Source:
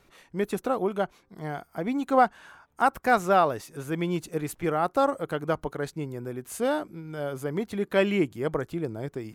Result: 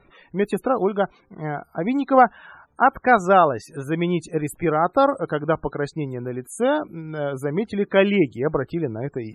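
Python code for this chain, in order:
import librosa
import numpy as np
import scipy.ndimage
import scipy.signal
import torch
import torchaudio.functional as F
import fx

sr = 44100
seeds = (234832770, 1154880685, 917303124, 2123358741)

y = fx.spec_topn(x, sr, count=64)
y = y * librosa.db_to_amplitude(6.0)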